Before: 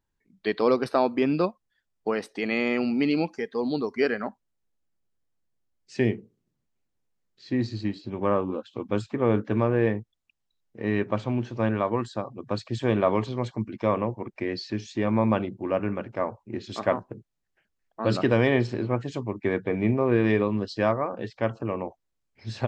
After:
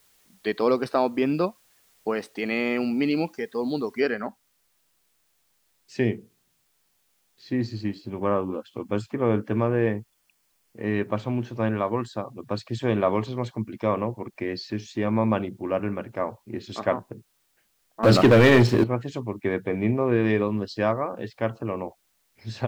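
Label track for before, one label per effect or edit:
4.000000	4.000000	noise floor step -62 dB -70 dB
7.560000	10.940000	band-stop 3.8 kHz
18.030000	18.840000	waveshaping leveller passes 3

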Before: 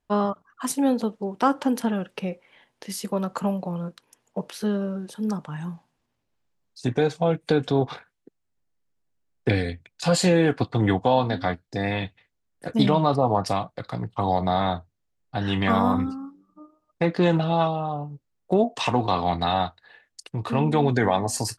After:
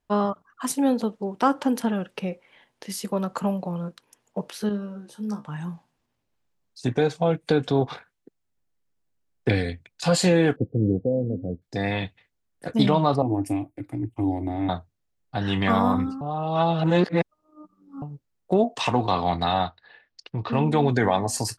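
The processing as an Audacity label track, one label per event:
4.690000	5.460000	feedback comb 69 Hz, decay 0.16 s, mix 100%
10.560000	11.620000	elliptic low-pass 510 Hz, stop band 50 dB
13.220000	14.690000	FFT filter 120 Hz 0 dB, 190 Hz -18 dB, 300 Hz +14 dB, 460 Hz -12 dB, 810 Hz -11 dB, 1.2 kHz -23 dB, 2.4 kHz -2 dB, 4 kHz -27 dB, 6.9 kHz -7 dB, 10 kHz +3 dB
16.210000	18.020000	reverse
19.590000	20.530000	steep low-pass 5.3 kHz

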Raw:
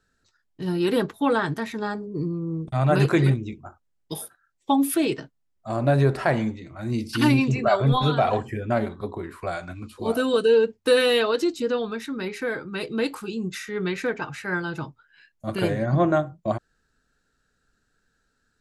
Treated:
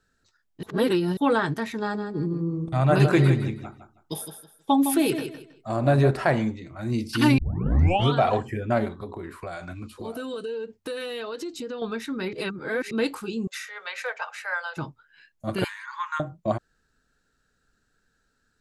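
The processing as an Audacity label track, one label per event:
0.630000	1.170000	reverse
1.780000	6.110000	feedback delay 160 ms, feedback 25%, level -9 dB
7.380000	7.380000	tape start 0.76 s
8.900000	11.820000	compression 5:1, threshold -31 dBFS
12.330000	12.910000	reverse
13.470000	14.770000	elliptic high-pass 540 Hz
15.640000	16.200000	brick-wall FIR high-pass 850 Hz

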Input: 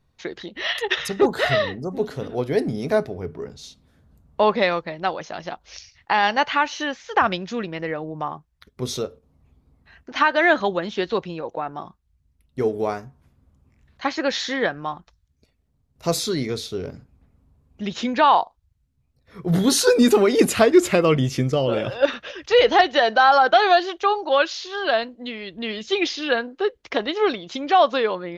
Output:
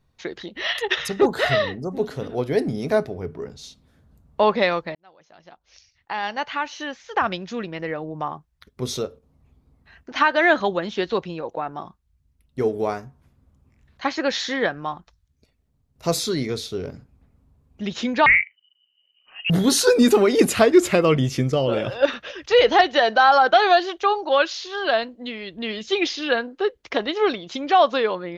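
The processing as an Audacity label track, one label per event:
4.950000	8.220000	fade in linear
18.260000	19.500000	frequency inversion carrier 3 kHz

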